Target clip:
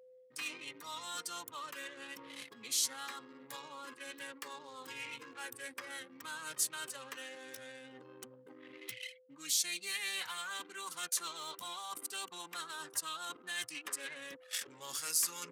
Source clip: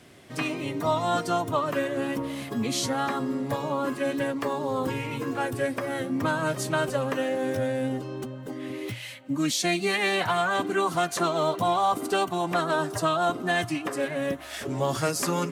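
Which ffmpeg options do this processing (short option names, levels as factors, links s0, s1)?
-af "anlmdn=3.98,aeval=exprs='val(0)+0.00794*sin(2*PI*510*n/s)':c=same,equalizer=f=660:t=o:w=0.32:g=-13.5,areverse,acompressor=threshold=0.0178:ratio=20,areverse,aderivative,volume=3.35"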